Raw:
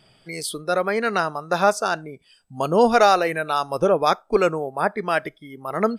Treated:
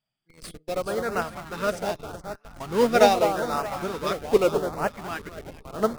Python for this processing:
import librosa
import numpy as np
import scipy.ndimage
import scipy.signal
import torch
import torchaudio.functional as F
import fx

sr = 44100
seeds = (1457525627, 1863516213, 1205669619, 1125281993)

p1 = fx.peak_eq(x, sr, hz=79.0, db=-5.5, octaves=0.66)
p2 = fx.echo_alternate(p1, sr, ms=209, hz=1300.0, feedback_pct=75, wet_db=-5)
p3 = fx.schmitt(p2, sr, flips_db=-24.5)
p4 = p2 + (p3 * 10.0 ** (-4.0 / 20.0))
p5 = fx.filter_lfo_notch(p4, sr, shape='saw_up', hz=0.82, low_hz=340.0, high_hz=3900.0, q=1.7)
y = fx.upward_expand(p5, sr, threshold_db=-30.0, expansion=2.5)